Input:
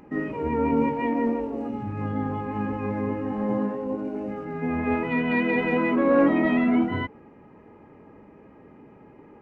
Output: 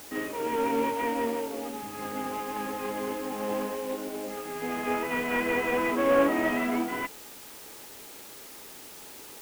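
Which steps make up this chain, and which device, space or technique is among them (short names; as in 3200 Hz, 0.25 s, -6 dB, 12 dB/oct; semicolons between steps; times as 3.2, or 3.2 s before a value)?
army field radio (BPF 390–3100 Hz; CVSD 16 kbps; white noise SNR 16 dB)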